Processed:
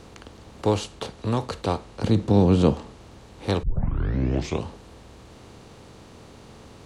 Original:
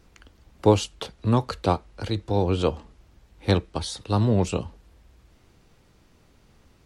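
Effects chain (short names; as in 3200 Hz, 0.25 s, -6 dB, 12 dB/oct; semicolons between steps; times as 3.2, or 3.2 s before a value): per-bin compression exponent 0.6; 2.04–2.74 bell 180 Hz +13 dB 2 oct; 3.63 tape start 1.03 s; gain -5.5 dB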